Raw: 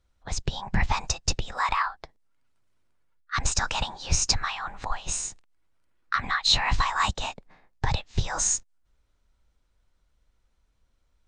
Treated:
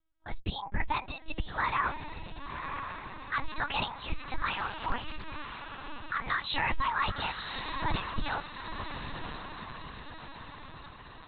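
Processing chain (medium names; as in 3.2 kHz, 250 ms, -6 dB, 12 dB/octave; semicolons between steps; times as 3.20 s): spectral noise reduction 8 dB; on a send: echo that smears into a reverb 1031 ms, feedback 57%, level -10.5 dB; on the sum: peak limiter -18 dBFS, peak gain reduction 10.5 dB; LPC vocoder at 8 kHz pitch kept; 4.53–5.26 s: loudspeaker Doppler distortion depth 0.44 ms; trim -1.5 dB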